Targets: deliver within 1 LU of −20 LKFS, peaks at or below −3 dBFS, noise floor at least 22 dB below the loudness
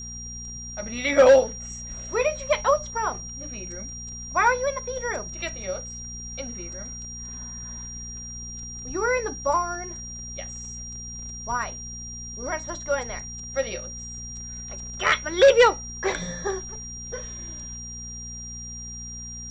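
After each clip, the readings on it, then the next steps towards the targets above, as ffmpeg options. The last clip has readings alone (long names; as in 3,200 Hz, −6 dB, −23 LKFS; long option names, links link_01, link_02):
mains hum 60 Hz; hum harmonics up to 240 Hz; level of the hum −39 dBFS; interfering tone 5,700 Hz; level of the tone −36 dBFS; integrated loudness −26.5 LKFS; sample peak −8.5 dBFS; target loudness −20.0 LKFS
→ -af "bandreject=frequency=60:width_type=h:width=4,bandreject=frequency=120:width_type=h:width=4,bandreject=frequency=180:width_type=h:width=4,bandreject=frequency=240:width_type=h:width=4"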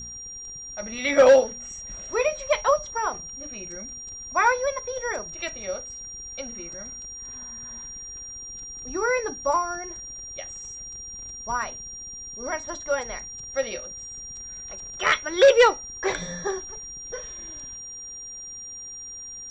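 mains hum none found; interfering tone 5,700 Hz; level of the tone −36 dBFS
→ -af "bandreject=frequency=5700:width=30"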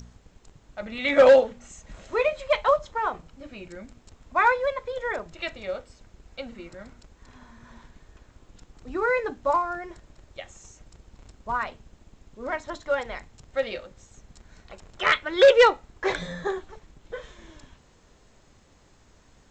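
interfering tone none found; integrated loudness −24.0 LKFS; sample peak −8.5 dBFS; target loudness −20.0 LKFS
→ -af "volume=4dB"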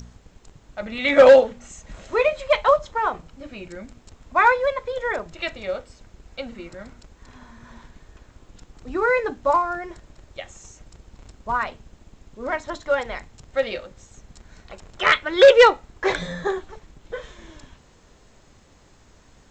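integrated loudness −20.0 LKFS; sample peak −4.5 dBFS; background noise floor −54 dBFS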